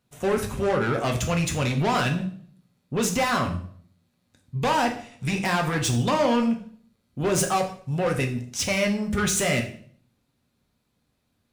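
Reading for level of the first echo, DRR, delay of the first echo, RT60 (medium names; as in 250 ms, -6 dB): no echo, 2.0 dB, no echo, 0.55 s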